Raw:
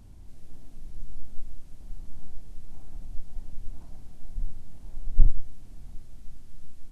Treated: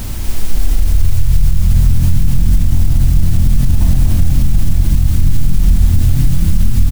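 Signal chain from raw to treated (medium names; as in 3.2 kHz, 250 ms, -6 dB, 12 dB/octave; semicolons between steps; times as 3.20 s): reverse; compression 10:1, threshold -29 dBFS, peak gain reduction 23.5 dB; reverse; word length cut 10-bit, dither triangular; frequency-shifting echo 241 ms, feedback 56%, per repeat -43 Hz, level -3 dB; loudness maximiser +28 dB; trim -1 dB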